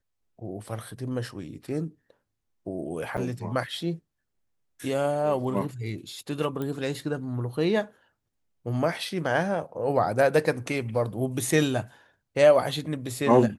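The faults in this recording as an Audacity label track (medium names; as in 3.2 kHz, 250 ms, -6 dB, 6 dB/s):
3.170000	3.180000	dropout 7.3 ms
6.620000	6.620000	pop -20 dBFS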